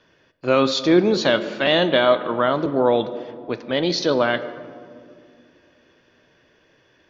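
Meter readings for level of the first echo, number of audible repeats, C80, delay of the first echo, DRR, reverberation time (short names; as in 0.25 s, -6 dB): none, none, 14.5 dB, none, 11.5 dB, 2.3 s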